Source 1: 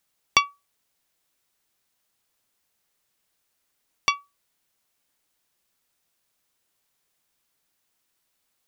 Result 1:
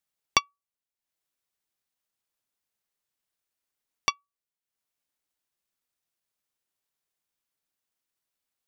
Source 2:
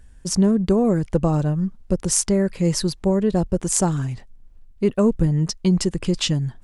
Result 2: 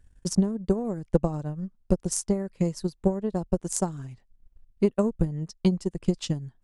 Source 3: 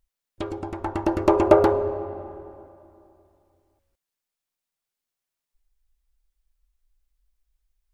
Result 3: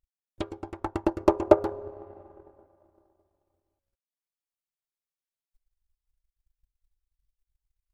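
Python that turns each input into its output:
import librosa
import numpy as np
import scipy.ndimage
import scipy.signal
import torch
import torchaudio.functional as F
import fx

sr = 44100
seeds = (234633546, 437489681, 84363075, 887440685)

y = fx.dynamic_eq(x, sr, hz=2300.0, q=0.81, threshold_db=-38.0, ratio=4.0, max_db=-5)
y = fx.transient(y, sr, attack_db=12, sustain_db=-8)
y = F.gain(torch.from_numpy(y), -12.0).numpy()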